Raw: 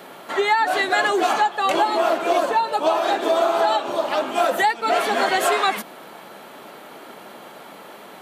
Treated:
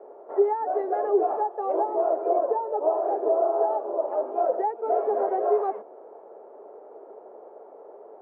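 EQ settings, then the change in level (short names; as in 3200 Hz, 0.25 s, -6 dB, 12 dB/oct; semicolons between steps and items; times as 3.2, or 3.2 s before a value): resonant high-pass 420 Hz, resonance Q 5; ladder low-pass 910 Hz, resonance 35%; tilt +1.5 dB/oct; -3.5 dB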